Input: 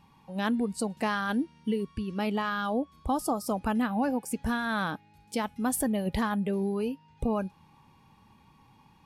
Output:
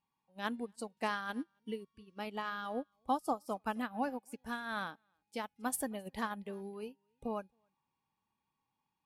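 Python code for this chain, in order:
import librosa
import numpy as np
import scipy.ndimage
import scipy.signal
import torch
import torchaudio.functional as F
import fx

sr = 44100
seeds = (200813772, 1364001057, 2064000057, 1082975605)

y = fx.low_shelf(x, sr, hz=240.0, db=-10.5)
y = y + 10.0 ** (-22.0 / 20.0) * np.pad(y, (int(270 * sr / 1000.0), 0))[:len(y)]
y = fx.upward_expand(y, sr, threshold_db=-42.0, expansion=2.5)
y = F.gain(torch.from_numpy(y), -1.0).numpy()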